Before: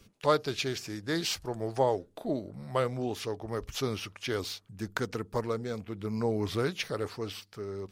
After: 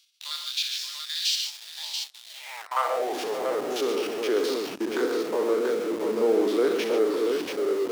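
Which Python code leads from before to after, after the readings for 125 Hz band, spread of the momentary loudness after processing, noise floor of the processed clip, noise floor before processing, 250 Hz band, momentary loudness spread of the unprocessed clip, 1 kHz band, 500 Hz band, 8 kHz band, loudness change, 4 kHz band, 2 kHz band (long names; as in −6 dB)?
below −15 dB, 9 LU, −46 dBFS, −61 dBFS, +4.5 dB, 9 LU, +3.5 dB, +7.5 dB, +6.5 dB, +6.5 dB, +8.5 dB, +3.5 dB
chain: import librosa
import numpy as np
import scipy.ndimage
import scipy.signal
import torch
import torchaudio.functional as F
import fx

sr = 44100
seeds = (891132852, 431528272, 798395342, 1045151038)

p1 = fx.spec_steps(x, sr, hold_ms=50)
p2 = fx.peak_eq(p1, sr, hz=160.0, db=2.5, octaves=1.4)
p3 = fx.echo_multitap(p2, sr, ms=(63, 110, 120, 143, 577, 685), db=(-9.0, -19.5, -11.5, -9.5, -14.0, -5.5))
p4 = fx.filter_sweep_highpass(p3, sr, from_hz=960.0, to_hz=430.0, start_s=2.52, end_s=4.33, q=1.4)
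p5 = fx.schmitt(p4, sr, flips_db=-42.0)
p6 = p4 + F.gain(torch.from_numpy(p5), -4.0).numpy()
y = fx.filter_sweep_highpass(p6, sr, from_hz=3700.0, to_hz=290.0, start_s=2.31, end_s=3.18, q=2.4)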